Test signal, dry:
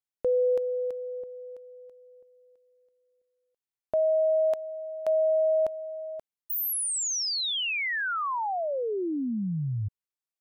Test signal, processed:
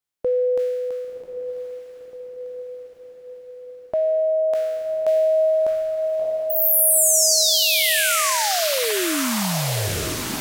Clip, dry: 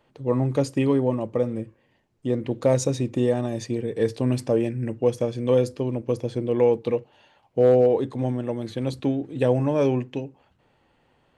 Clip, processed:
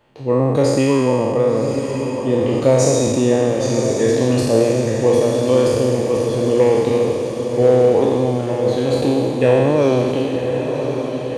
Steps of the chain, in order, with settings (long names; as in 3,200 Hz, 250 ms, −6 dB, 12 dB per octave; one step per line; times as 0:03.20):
peak hold with a decay on every bin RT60 2.06 s
feedback delay with all-pass diffusion 1,085 ms, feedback 62%, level −7 dB
level +3.5 dB